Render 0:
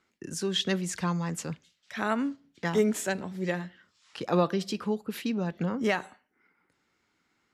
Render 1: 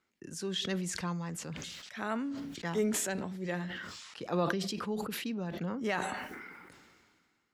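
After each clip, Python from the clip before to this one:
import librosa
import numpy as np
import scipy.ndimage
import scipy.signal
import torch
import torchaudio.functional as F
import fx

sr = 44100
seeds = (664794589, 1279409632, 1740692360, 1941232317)

y = fx.sustainer(x, sr, db_per_s=31.0)
y = y * 10.0 ** (-7.0 / 20.0)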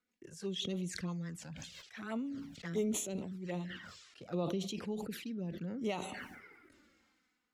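y = fx.rotary_switch(x, sr, hz=6.0, then_hz=0.8, switch_at_s=2.75)
y = fx.env_flanger(y, sr, rest_ms=4.1, full_db=-33.0)
y = y * 10.0 ** (-1.0 / 20.0)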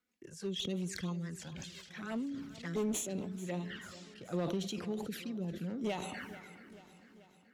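y = fx.clip_asym(x, sr, top_db=-34.5, bottom_db=-27.5)
y = fx.echo_feedback(y, sr, ms=436, feedback_pct=60, wet_db=-16.5)
y = y * 10.0 ** (1.0 / 20.0)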